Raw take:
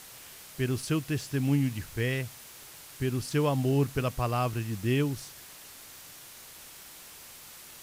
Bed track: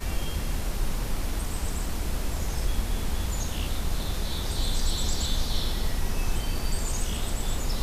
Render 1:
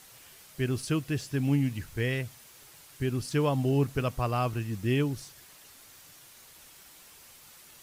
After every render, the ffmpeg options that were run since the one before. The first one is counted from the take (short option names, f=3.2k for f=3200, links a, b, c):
-af "afftdn=nr=6:nf=-49"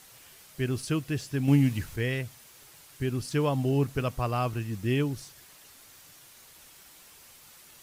-filter_complex "[0:a]asplit=3[a][b][c];[a]atrim=end=1.482[d];[b]atrim=start=1.478:end=1.962,asetpts=PTS-STARTPTS,volume=4.5dB[e];[c]atrim=start=1.958[f];[d][e]acrossfade=d=0.004:c1=hsin:c2=hsin[g];[g][f]acrossfade=d=0.004:c1=hsin:c2=hsin"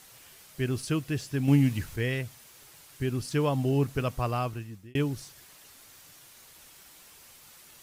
-filter_complex "[0:a]asplit=2[a][b];[a]atrim=end=4.95,asetpts=PTS-STARTPTS,afade=t=out:st=4.3:d=0.65[c];[b]atrim=start=4.95,asetpts=PTS-STARTPTS,afade=t=in:d=0.004:c=hsin[d];[c][d]concat=n=2:v=0:a=1"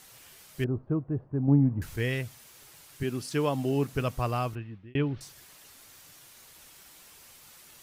-filter_complex "[0:a]asettb=1/sr,asplit=3[a][b][c];[a]atrim=end=0.644[d];[b]atrim=start=0.64:end=1.82,asetpts=PTS-STARTPTS,afade=t=in:d=0.004:c=qsin,afade=t=out:st=1.176:d=0.004:c=qsin,lowpass=f=1k:w=0.5412,lowpass=f=1k:w=1.3066[e];[c]atrim=start=1.816[f];[d][e]acrossfade=d=0.004:c1=hsin:c2=qsin[g];[g][f]acrossfade=d=0.004:c1=qsin:c2=hsin,asettb=1/sr,asplit=3[h][i][j];[h]atrim=end=3.034[k];[i]atrim=start=3.03:end=3.93,asetpts=PTS-STARTPTS,afade=t=in:d=0.004:c=qsin,afade=t=out:st=0.896:d=0.004:c=qsin,highpass=160[l];[j]atrim=start=3.926[m];[k][l]acrossfade=d=0.004:c1=hsin:c2=qsin[n];[n][m]acrossfade=d=0.004:c1=qsin:c2=hsin,asettb=1/sr,asplit=3[o][p][q];[o]atrim=end=4.554[r];[p]atrim=start=4.55:end=5.21,asetpts=PTS-STARTPTS,afade=t=in:d=0.004:c=qsin,afade=t=out:st=0.656:d=0.004:c=qsin,lowpass=f=3.2k:w=0.5412,lowpass=f=3.2k:w=1.3066[s];[q]atrim=start=5.206[t];[r][s]acrossfade=d=0.004:c1=hsin:c2=qsin[u];[u][t]acrossfade=d=0.004:c1=qsin:c2=hsin"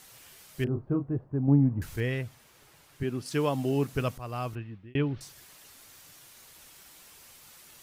-filter_complex "[0:a]asettb=1/sr,asplit=3[a][b][c];[a]atrim=end=0.644[d];[b]atrim=start=0.64:end=1.17,asetpts=PTS-STARTPTS,afade=t=in:d=0.004:c=qsin,afade=t=out:st=0.526:d=0.004:c=qsin,asplit=2[e][f];[f]adelay=29,volume=-7dB[g];[e][g]amix=inputs=2:normalize=0,atrim=end_sample=23373[h];[c]atrim=start=1.166[i];[d][h]acrossfade=d=0.004:c1=hsin:c2=qsin[j];[j][i]acrossfade=d=0.004:c1=qsin:c2=hsin,asettb=1/sr,asplit=3[k][l][m];[k]atrim=end=2.004[n];[l]atrim=start=2:end=3.26,asetpts=PTS-STARTPTS,afade=t=in:d=0.004:c=qsin,afade=t=out:st=1.256:d=0.004:c=qsin,highshelf=f=3.4k:g=-9.5[o];[m]atrim=start=3.256[p];[n][o]acrossfade=d=0.004:c1=hsin:c2=qsin[q];[q][p]acrossfade=d=0.004:c1=qsin:c2=hsin,asplit=2[r][s];[r]atrim=end=4.18,asetpts=PTS-STARTPTS,afade=t=out:st=4.176:d=0.004:c=hsin:silence=0.188365[t];[s]atrim=start=4.18,asetpts=PTS-STARTPTS,afade=t=in:d=0.4:silence=0.188365[u];[t][u]concat=n=2:v=0:a=1"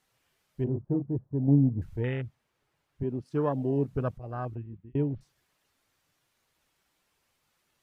-af "afwtdn=0.0224,highshelf=f=4.8k:g=-11.5"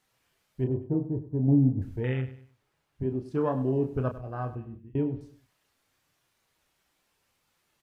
-filter_complex "[0:a]asplit=2[a][b];[b]adelay=31,volume=-7.5dB[c];[a][c]amix=inputs=2:normalize=0,aecho=1:1:99|198|297:0.188|0.0678|0.0244"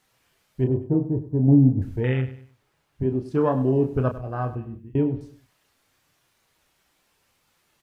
-af "volume=6dB"